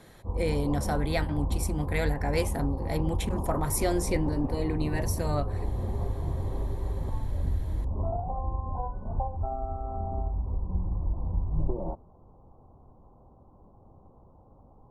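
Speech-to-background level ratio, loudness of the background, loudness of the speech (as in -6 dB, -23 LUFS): 1.5 dB, -33.0 LUFS, -31.5 LUFS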